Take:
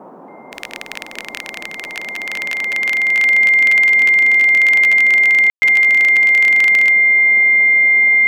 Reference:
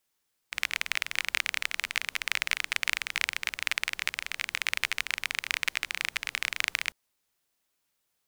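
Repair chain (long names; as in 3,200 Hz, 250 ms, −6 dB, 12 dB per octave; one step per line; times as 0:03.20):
notch filter 2,100 Hz, Q 30
ambience match 0:05.50–0:05.62
noise reduction from a noise print 30 dB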